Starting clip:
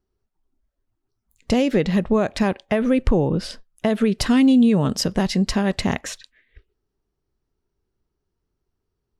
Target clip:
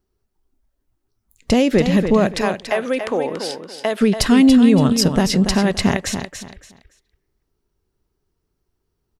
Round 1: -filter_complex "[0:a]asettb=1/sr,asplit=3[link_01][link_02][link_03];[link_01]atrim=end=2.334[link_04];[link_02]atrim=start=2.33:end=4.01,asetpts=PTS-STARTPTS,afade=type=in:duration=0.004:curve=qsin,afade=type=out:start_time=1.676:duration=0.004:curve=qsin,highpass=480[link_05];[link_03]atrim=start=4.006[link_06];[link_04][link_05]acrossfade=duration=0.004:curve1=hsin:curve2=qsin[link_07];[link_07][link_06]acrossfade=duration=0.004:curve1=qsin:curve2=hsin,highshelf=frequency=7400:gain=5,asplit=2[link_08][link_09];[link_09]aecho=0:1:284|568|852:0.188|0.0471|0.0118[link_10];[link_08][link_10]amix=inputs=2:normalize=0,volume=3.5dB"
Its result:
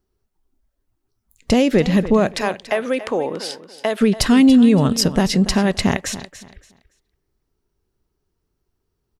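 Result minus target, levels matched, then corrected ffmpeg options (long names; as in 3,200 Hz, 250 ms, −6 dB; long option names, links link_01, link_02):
echo-to-direct −6.5 dB
-filter_complex "[0:a]asettb=1/sr,asplit=3[link_01][link_02][link_03];[link_01]atrim=end=2.334[link_04];[link_02]atrim=start=2.33:end=4.01,asetpts=PTS-STARTPTS,afade=type=in:duration=0.004:curve=qsin,afade=type=out:start_time=1.676:duration=0.004:curve=qsin,highpass=480[link_05];[link_03]atrim=start=4.006[link_06];[link_04][link_05]acrossfade=duration=0.004:curve1=hsin:curve2=qsin[link_07];[link_07][link_06]acrossfade=duration=0.004:curve1=qsin:curve2=hsin,highshelf=frequency=7400:gain=5,asplit=2[link_08][link_09];[link_09]aecho=0:1:284|568|852:0.398|0.0995|0.0249[link_10];[link_08][link_10]amix=inputs=2:normalize=0,volume=3.5dB"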